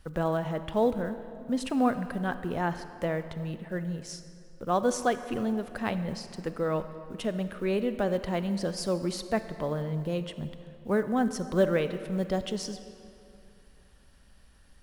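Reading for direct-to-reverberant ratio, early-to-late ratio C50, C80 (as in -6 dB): 10.5 dB, 11.0 dB, 12.0 dB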